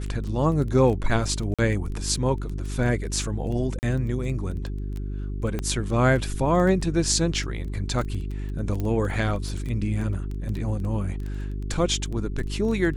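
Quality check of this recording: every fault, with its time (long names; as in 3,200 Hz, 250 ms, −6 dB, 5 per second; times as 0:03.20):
surface crackle 11 per second −29 dBFS
mains hum 50 Hz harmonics 8 −30 dBFS
0:01.54–0:01.59: drop-out 46 ms
0:03.79–0:03.83: drop-out 39 ms
0:05.59: click −15 dBFS
0:08.80: click −17 dBFS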